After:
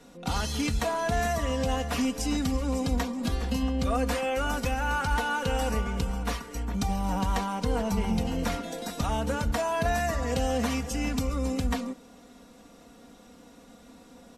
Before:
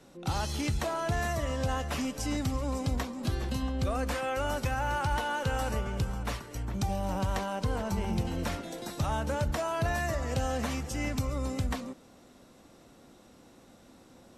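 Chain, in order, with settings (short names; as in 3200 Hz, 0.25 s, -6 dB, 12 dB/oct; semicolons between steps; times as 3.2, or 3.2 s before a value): comb 4.2 ms, depth 69%; gain +2 dB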